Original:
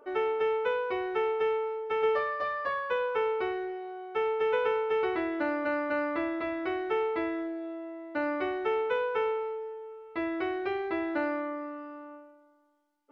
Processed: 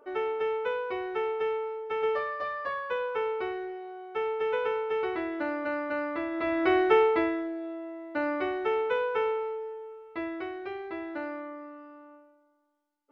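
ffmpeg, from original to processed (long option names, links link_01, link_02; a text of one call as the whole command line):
ffmpeg -i in.wav -af "volume=9.5dB,afade=type=in:start_time=6.3:duration=0.49:silence=0.281838,afade=type=out:start_time=6.79:duration=0.63:silence=0.375837,afade=type=out:start_time=9.81:duration=0.7:silence=0.473151" out.wav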